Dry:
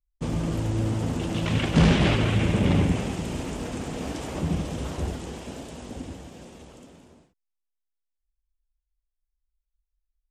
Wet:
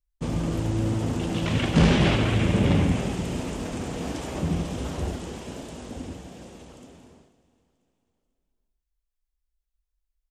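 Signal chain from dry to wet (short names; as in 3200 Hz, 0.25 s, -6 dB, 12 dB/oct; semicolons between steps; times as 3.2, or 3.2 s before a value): feedback echo 0.492 s, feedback 45%, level -21 dB; on a send at -10 dB: reverb RT60 0.70 s, pre-delay 20 ms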